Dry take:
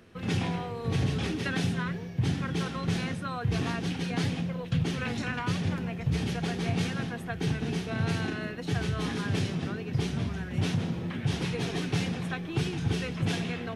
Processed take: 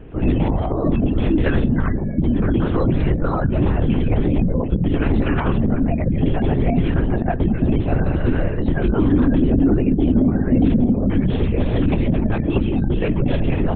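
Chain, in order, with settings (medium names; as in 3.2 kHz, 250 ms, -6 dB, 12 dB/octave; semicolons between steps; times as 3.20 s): compression 3:1, threshold -31 dBFS, peak gain reduction 7 dB; 8.83–10.86 s: peaking EQ 300 Hz +10 dB 0.52 oct; spectral gate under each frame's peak -25 dB strong; de-hum 162.5 Hz, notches 12; small resonant body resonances 260/570 Hz, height 16 dB, ringing for 25 ms; LPC vocoder at 8 kHz whisper; loudness maximiser +14.5 dB; trim -6.5 dB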